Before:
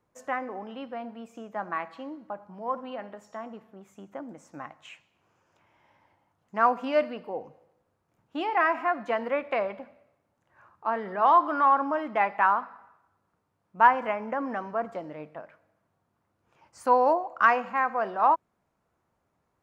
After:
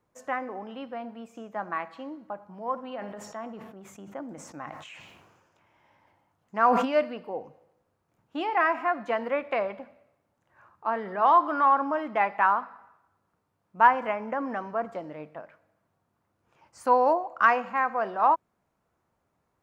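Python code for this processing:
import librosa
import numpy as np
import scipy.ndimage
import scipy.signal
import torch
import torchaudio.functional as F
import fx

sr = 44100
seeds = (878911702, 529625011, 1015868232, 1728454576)

y = fx.sustainer(x, sr, db_per_s=40.0, at=(3.0, 6.85), fade=0.02)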